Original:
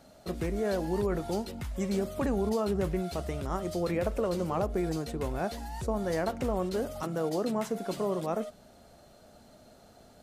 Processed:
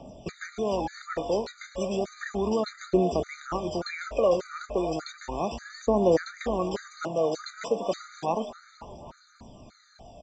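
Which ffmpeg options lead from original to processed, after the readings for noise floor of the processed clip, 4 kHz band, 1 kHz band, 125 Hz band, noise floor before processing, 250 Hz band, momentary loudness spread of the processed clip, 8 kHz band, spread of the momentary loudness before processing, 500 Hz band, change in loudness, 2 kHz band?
-58 dBFS, +4.5 dB, +4.0 dB, -3.0 dB, -57 dBFS, +0.5 dB, 13 LU, +1.5 dB, 5 LU, +4.0 dB, +3.0 dB, +4.5 dB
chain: -filter_complex "[0:a]acrossover=split=220|1100|6200[s0][s1][s2][s3];[s0]acompressor=threshold=0.00316:ratio=6[s4];[s4][s1][s2][s3]amix=inputs=4:normalize=0,aphaser=in_gain=1:out_gain=1:delay=2.1:decay=0.55:speed=0.33:type=triangular,asplit=6[s5][s6][s7][s8][s9][s10];[s6]adelay=258,afreqshift=79,volume=0.2[s11];[s7]adelay=516,afreqshift=158,volume=0.107[s12];[s8]adelay=774,afreqshift=237,volume=0.0582[s13];[s9]adelay=1032,afreqshift=316,volume=0.0313[s14];[s10]adelay=1290,afreqshift=395,volume=0.017[s15];[s5][s11][s12][s13][s14][s15]amix=inputs=6:normalize=0,aresample=16000,aresample=44100,afftfilt=real='re*gt(sin(2*PI*1.7*pts/sr)*(1-2*mod(floor(b*sr/1024/1200),2)),0)':imag='im*gt(sin(2*PI*1.7*pts/sr)*(1-2*mod(floor(b*sr/1024/1200),2)),0)':win_size=1024:overlap=0.75,volume=2"

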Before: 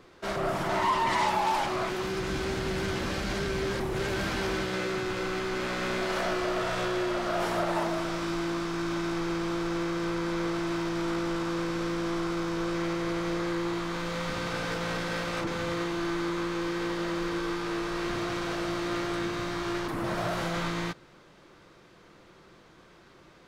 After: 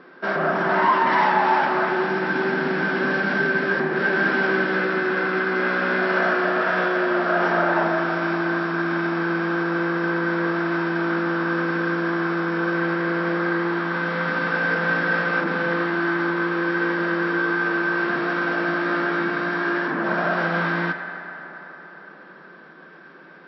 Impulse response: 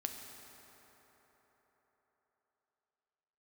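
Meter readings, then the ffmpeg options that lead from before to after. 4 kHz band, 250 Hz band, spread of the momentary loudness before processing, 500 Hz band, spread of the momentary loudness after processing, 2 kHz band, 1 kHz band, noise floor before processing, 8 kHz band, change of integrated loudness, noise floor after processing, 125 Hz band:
0.0 dB, +6.5 dB, 3 LU, +7.0 dB, 4 LU, +14.5 dB, +8.5 dB, -55 dBFS, under -15 dB, +8.5 dB, -45 dBFS, +4.5 dB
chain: -filter_complex "[0:a]asplit=2[s0][s1];[s1]equalizer=f=1600:t=o:w=0.31:g=15[s2];[1:a]atrim=start_sample=2205,lowpass=2900[s3];[s2][s3]afir=irnorm=-1:irlink=0,volume=1.5[s4];[s0][s4]amix=inputs=2:normalize=0,afftfilt=real='re*between(b*sr/4096,150,5700)':imag='im*between(b*sr/4096,150,5700)':win_size=4096:overlap=0.75"

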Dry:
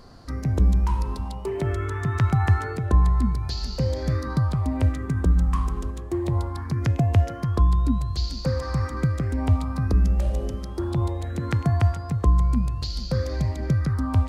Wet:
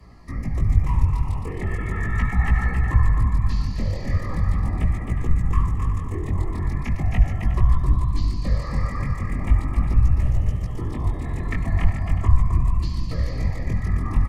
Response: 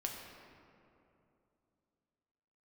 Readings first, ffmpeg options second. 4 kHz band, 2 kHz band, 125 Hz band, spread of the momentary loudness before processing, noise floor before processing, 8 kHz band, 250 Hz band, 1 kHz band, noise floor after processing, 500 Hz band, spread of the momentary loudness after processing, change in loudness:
-6.5 dB, +4.0 dB, 0.0 dB, 7 LU, -34 dBFS, no reading, -3.0 dB, -1.5 dB, -29 dBFS, -6.5 dB, 6 LU, +0.5 dB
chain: -filter_complex "[0:a]afftfilt=real='hypot(re,im)*cos(2*PI*random(0))':imag='hypot(re,im)*sin(2*PI*random(1))':win_size=512:overlap=0.75,asuperstop=centerf=1500:order=12:qfactor=4.9,bandreject=f=292.8:t=h:w=4,bandreject=f=585.6:t=h:w=4,bandreject=f=878.4:t=h:w=4,bandreject=f=1171.2:t=h:w=4,bandreject=f=1464:t=h:w=4,bandreject=f=1756.8:t=h:w=4,bandreject=f=2049.6:t=h:w=4,bandreject=f=2342.4:t=h:w=4,flanger=delay=16.5:depth=6.1:speed=0.39,lowshelf=f=190:g=9.5,acrossover=split=130|3000[s0][s1][s2];[s1]acompressor=threshold=0.0631:ratio=8[s3];[s0][s3][s2]amix=inputs=3:normalize=0,aecho=1:1:265|362|437:0.531|0.251|0.299,acrossover=split=100|480|3200[s4][s5][s6][s7];[s5]acompressor=threshold=0.02:ratio=6[s8];[s4][s8][s6][s7]amix=inputs=4:normalize=0,equalizer=f=125:t=o:w=1:g=-3,equalizer=f=500:t=o:w=1:g=-5,equalizer=f=2000:t=o:w=1:g=11,equalizer=f=4000:t=o:w=1:g=-8,volume=1.88"

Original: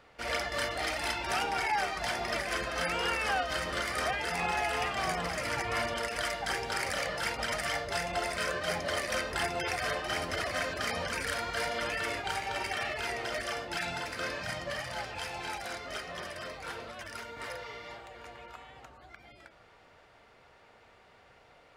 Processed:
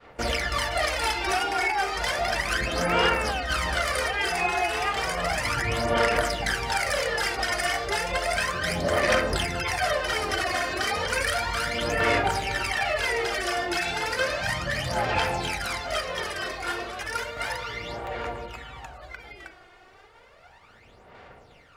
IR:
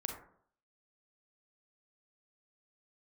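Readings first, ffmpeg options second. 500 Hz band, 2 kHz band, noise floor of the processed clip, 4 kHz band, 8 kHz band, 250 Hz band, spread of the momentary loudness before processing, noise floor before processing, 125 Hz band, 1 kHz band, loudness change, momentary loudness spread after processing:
+8.0 dB, +7.0 dB, -53 dBFS, +7.0 dB, +6.5 dB, +8.0 dB, 11 LU, -60 dBFS, +10.0 dB, +7.0 dB, +7.0 dB, 9 LU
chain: -filter_complex "[0:a]agate=range=0.0224:threshold=0.002:ratio=3:detection=peak,acompressor=threshold=0.0224:ratio=6,aphaser=in_gain=1:out_gain=1:delay=2.8:decay=0.63:speed=0.33:type=sinusoidal,asplit=2[s0][s1];[1:a]atrim=start_sample=2205[s2];[s1][s2]afir=irnorm=-1:irlink=0,volume=0.422[s3];[s0][s3]amix=inputs=2:normalize=0,volume=1.88"

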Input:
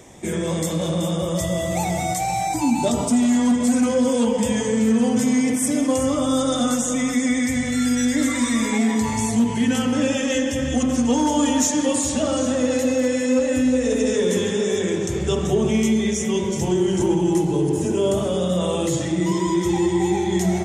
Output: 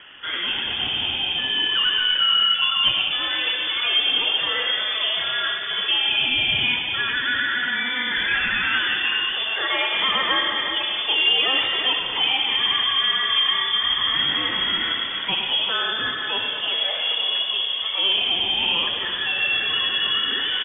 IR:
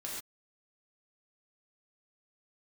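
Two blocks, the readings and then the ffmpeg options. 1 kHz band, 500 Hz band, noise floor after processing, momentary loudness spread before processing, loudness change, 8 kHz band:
-2.0 dB, -15.5 dB, -27 dBFS, 4 LU, +1.0 dB, under -40 dB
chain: -filter_complex "[0:a]highpass=750,asplit=2[s0][s1];[s1]asoftclip=type=tanh:threshold=0.0422,volume=0.316[s2];[s0][s2]amix=inputs=2:normalize=0,acrusher=bits=7:mode=log:mix=0:aa=0.000001,aeval=exprs='(mod(3.76*val(0)+1,2)-1)/3.76':c=same,asplit=7[s3][s4][s5][s6][s7][s8][s9];[s4]adelay=99,afreqshift=-34,volume=0.376[s10];[s5]adelay=198,afreqshift=-68,volume=0.193[s11];[s6]adelay=297,afreqshift=-102,volume=0.0977[s12];[s7]adelay=396,afreqshift=-136,volume=0.0501[s13];[s8]adelay=495,afreqshift=-170,volume=0.0254[s14];[s9]adelay=594,afreqshift=-204,volume=0.013[s15];[s3][s10][s11][s12][s13][s14][s15]amix=inputs=7:normalize=0,lowpass=f=3100:t=q:w=0.5098,lowpass=f=3100:t=q:w=0.6013,lowpass=f=3100:t=q:w=0.9,lowpass=f=3100:t=q:w=2.563,afreqshift=-3700,volume=2"

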